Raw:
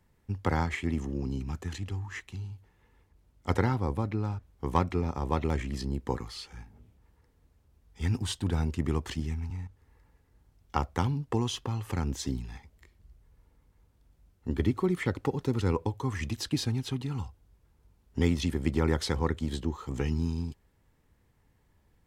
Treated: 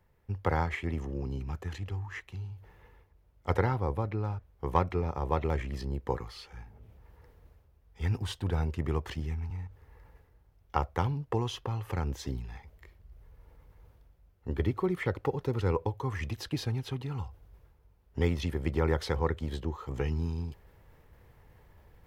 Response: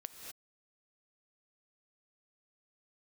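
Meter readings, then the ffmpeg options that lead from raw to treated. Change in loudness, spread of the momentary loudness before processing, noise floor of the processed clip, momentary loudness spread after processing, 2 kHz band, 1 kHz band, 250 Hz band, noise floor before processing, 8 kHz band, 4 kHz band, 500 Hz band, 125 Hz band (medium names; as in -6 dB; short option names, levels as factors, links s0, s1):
-1.5 dB, 12 LU, -64 dBFS, 12 LU, -1.0 dB, +0.5 dB, -5.0 dB, -67 dBFS, -8.5 dB, -4.5 dB, +0.5 dB, -1.0 dB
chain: -af "areverse,acompressor=mode=upward:threshold=0.00562:ratio=2.5,areverse,equalizer=f=250:t=o:w=1:g=-8,equalizer=f=500:t=o:w=1:g=4,equalizer=f=4000:t=o:w=1:g=-3,equalizer=f=8000:t=o:w=1:g=-10"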